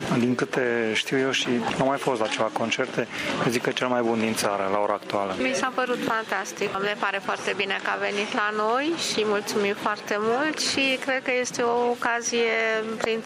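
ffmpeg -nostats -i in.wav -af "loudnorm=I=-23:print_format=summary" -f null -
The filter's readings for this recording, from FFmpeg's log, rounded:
Input Integrated:    -24.5 LUFS
Input True Peak:      -7.8 dBTP
Input LRA:             1.6 LU
Input Threshold:     -34.5 LUFS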